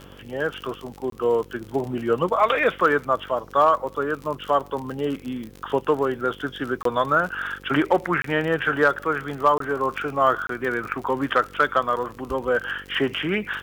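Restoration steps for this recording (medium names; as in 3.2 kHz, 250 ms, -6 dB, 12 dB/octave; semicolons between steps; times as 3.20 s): clip repair -8.5 dBFS; de-click; de-hum 47.9 Hz, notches 11; interpolate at 1.10/6.83/8.22/9.58/10.47 s, 23 ms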